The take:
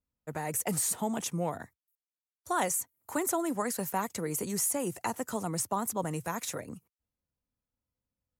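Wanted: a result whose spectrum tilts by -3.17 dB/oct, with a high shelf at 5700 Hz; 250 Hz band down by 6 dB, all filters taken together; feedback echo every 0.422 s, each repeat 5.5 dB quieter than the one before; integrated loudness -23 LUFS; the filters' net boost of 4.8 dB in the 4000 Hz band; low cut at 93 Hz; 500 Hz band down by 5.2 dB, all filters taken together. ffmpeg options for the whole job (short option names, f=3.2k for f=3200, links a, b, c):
-af "highpass=93,equalizer=f=250:t=o:g=-7,equalizer=f=500:t=o:g=-5,equalizer=f=4k:t=o:g=9,highshelf=f=5.7k:g=-6,aecho=1:1:422|844|1266|1688|2110|2532|2954:0.531|0.281|0.149|0.079|0.0419|0.0222|0.0118,volume=11dB"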